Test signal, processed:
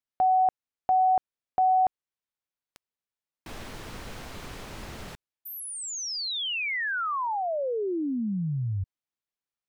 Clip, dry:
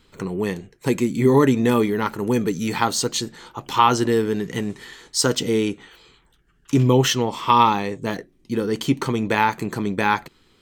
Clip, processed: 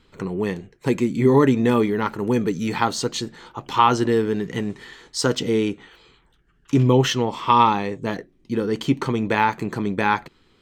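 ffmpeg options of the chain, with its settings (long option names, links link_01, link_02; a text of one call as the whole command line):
ffmpeg -i in.wav -af "highshelf=frequency=6900:gain=-12" out.wav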